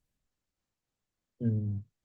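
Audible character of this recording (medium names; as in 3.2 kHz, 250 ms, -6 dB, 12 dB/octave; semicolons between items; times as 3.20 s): tremolo triangle 3.5 Hz, depth 45%; Opus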